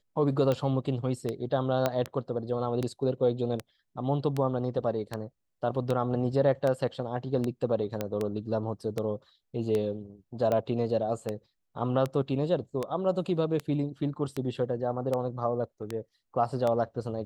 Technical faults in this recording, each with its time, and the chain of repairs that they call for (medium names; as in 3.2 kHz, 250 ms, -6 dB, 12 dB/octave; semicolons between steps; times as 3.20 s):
tick 78 rpm -17 dBFS
1.86 s: pop -12 dBFS
8.01 s: pop -16 dBFS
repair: de-click